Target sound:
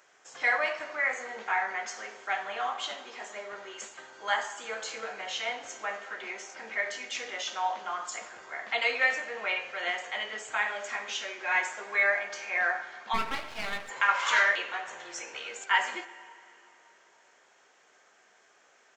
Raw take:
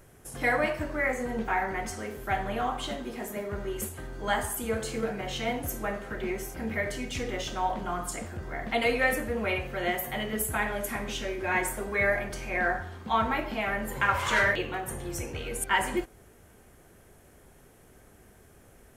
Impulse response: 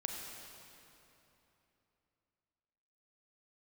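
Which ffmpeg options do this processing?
-filter_complex "[0:a]asplit=2[a][b];[b]adelay=15,volume=-12dB[c];[a][c]amix=inputs=2:normalize=0,asplit=2[d][e];[1:a]atrim=start_sample=2205[f];[e][f]afir=irnorm=-1:irlink=0,volume=-11.5dB[g];[d][g]amix=inputs=2:normalize=0,aresample=16000,aresample=44100,highpass=900,asplit=3[h][i][j];[h]afade=t=out:st=13.13:d=0.02[k];[i]aeval=exprs='max(val(0),0)':c=same,afade=t=in:st=13.13:d=0.02,afade=t=out:st=13.88:d=0.02[l];[j]afade=t=in:st=13.88:d=0.02[m];[k][l][m]amix=inputs=3:normalize=0"

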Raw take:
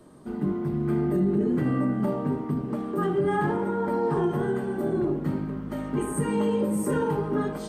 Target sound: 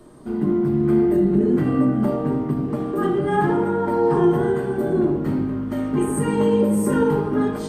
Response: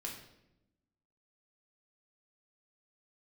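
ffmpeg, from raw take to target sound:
-filter_complex "[0:a]asplit=2[a][b];[1:a]atrim=start_sample=2205,lowshelf=f=80:g=8[c];[b][c]afir=irnorm=-1:irlink=0,volume=0.5dB[d];[a][d]amix=inputs=2:normalize=0"

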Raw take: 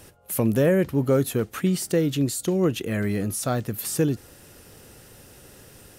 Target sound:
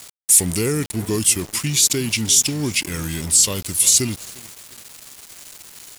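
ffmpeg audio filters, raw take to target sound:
-filter_complex "[0:a]acontrast=31,asplit=2[a][b];[b]adelay=350,lowpass=f=3.9k:p=1,volume=-17dB,asplit=2[c][d];[d]adelay=350,lowpass=f=3.9k:p=1,volume=0.44,asplit=2[e][f];[f]adelay=350,lowpass=f=3.9k:p=1,volume=0.44,asplit=2[g][h];[h]adelay=350,lowpass=f=3.9k:p=1,volume=0.44[i];[a][c][e][g][i]amix=inputs=5:normalize=0,asetrate=35002,aresample=44100,atempo=1.25992,aexciter=amount=6.3:drive=5.1:freq=2.1k,aeval=exprs='val(0)*gte(abs(val(0)),0.0668)':c=same,volume=-7dB"

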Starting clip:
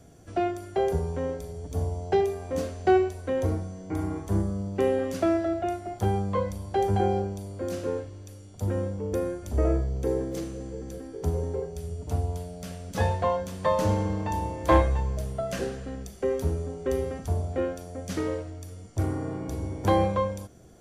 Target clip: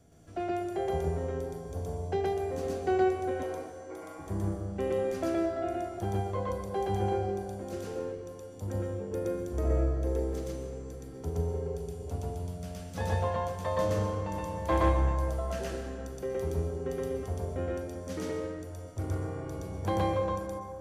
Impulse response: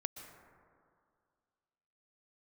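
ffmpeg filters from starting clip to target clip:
-filter_complex "[0:a]asettb=1/sr,asplit=3[a][b][c];[a]atrim=end=3.314[d];[b]atrim=start=3.31:end=4.19,asetpts=PTS-STARTPTS,afade=t=in:d=0.004:c=qsin,afade=t=out:st=0.876:d=0.004:c=qsin,highpass=550[e];[c]atrim=start=4.186[f];[d][e]acrossfade=d=0.004:c1=hsin:c2=qsin[g];[g][f]acrossfade=d=0.004:c1=qsin:c2=hsin,asplit=2[h][i];[1:a]atrim=start_sample=2205,adelay=120[j];[i][j]afir=irnorm=-1:irlink=0,volume=3.5dB[k];[h][k]amix=inputs=2:normalize=0,volume=-8.5dB"

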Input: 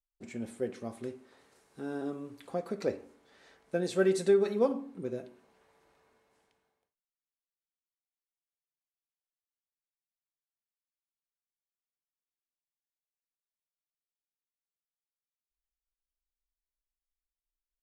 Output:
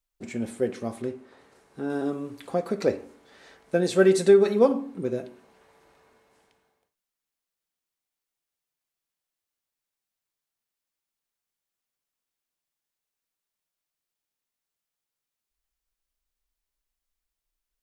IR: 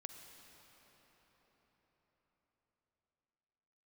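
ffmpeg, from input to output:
-filter_complex "[0:a]asettb=1/sr,asplit=3[a][b][c];[a]atrim=end=1.024[d];[b]atrim=start=1.02:end=1.9,asetpts=PTS-STARTPTS,afade=t=in:d=0.004:c=qsin,afade=t=out:st=0.876:d=0.004:c=qsin,highshelf=f=3.3k:g=-8[e];[c]atrim=start=1.896[f];[d][e]acrossfade=d=0.004:c1=hsin:c2=qsin[g];[g][f]acrossfade=d=0.004:c1=qsin:c2=hsin,volume=8dB"

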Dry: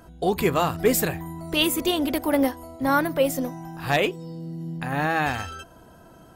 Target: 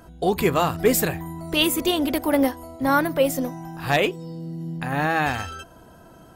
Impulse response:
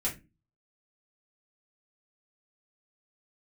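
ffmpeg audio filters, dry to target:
-af "volume=1.5dB"

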